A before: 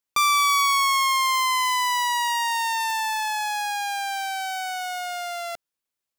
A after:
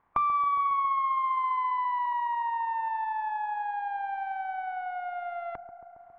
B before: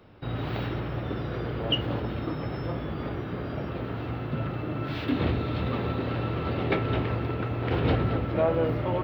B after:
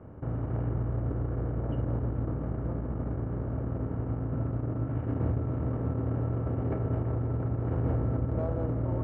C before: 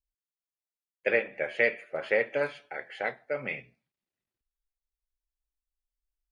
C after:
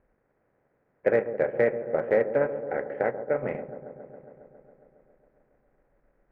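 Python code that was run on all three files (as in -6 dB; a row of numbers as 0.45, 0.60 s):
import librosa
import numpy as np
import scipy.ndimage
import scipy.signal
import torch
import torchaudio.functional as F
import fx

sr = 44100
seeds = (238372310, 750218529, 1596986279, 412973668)

p1 = fx.bin_compress(x, sr, power=0.6)
p2 = scipy.signal.sosfilt(scipy.signal.butter(4, 1500.0, 'lowpass', fs=sr, output='sos'), p1)
p3 = fx.low_shelf(p2, sr, hz=260.0, db=11.5)
p4 = fx.hum_notches(p3, sr, base_hz=50, count=5)
p5 = fx.transient(p4, sr, attack_db=2, sustain_db=-10)
p6 = np.clip(p5, -10.0 ** (-14.0 / 20.0), 10.0 ** (-14.0 / 20.0))
p7 = p5 + (p6 * 10.0 ** (-11.5 / 20.0))
p8 = fx.echo_wet_lowpass(p7, sr, ms=137, feedback_pct=77, hz=840.0, wet_db=-10.5)
y = p8 * 10.0 ** (-30 / 20.0) / np.sqrt(np.mean(np.square(p8)))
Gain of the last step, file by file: -7.5, -15.5, -2.0 dB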